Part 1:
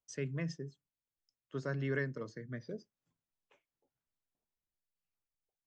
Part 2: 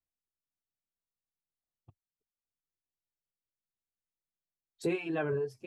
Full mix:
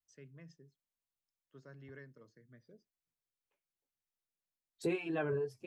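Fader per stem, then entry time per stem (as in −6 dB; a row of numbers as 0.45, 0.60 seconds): −17.5, −3.0 decibels; 0.00, 0.00 seconds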